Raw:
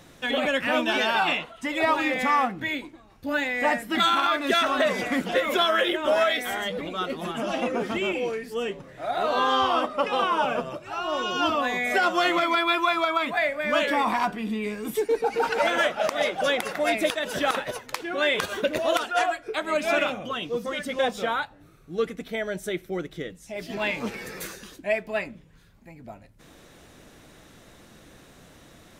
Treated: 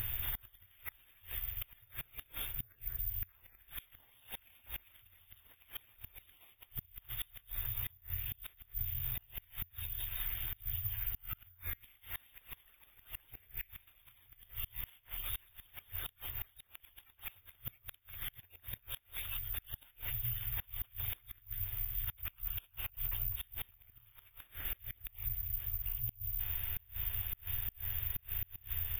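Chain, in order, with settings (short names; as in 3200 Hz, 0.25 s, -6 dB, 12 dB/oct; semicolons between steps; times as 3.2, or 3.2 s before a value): FFT band-reject 120–11000 Hz; ripple EQ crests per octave 1.4, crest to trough 10 dB; compressor 6:1, threshold -56 dBFS, peak gain reduction 18.5 dB; careless resampling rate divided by 3×, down none, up zero stuff; on a send: echo with dull and thin repeats by turns 0.197 s, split 2200 Hz, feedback 61%, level -12.5 dB; on the sum: flipped gate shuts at -41 dBFS, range -27 dB; gain +17.5 dB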